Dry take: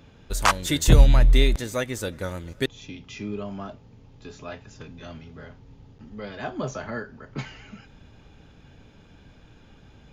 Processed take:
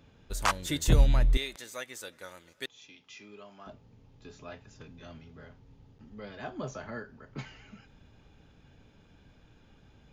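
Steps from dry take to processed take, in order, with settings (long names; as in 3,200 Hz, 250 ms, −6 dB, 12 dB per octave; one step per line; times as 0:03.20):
0:01.37–0:03.67: high-pass filter 1,100 Hz 6 dB per octave
level −7.5 dB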